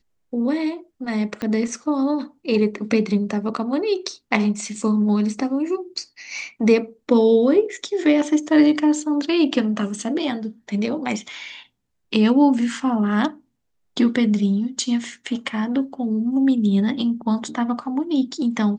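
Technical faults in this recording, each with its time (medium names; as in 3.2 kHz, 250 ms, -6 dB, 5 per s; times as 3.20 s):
1.42 s: pop -14 dBFS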